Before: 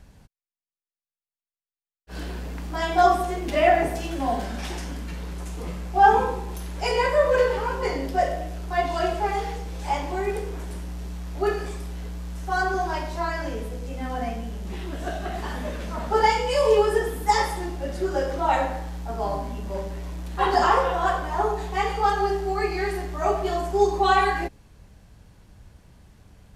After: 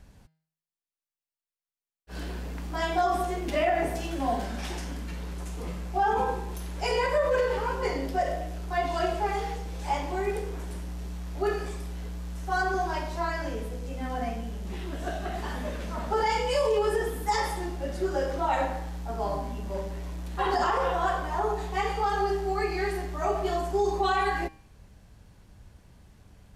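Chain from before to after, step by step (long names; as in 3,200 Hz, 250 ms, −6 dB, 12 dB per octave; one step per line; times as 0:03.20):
hum removal 158.7 Hz, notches 33
brickwall limiter −14.5 dBFS, peak gain reduction 8 dB
level −2.5 dB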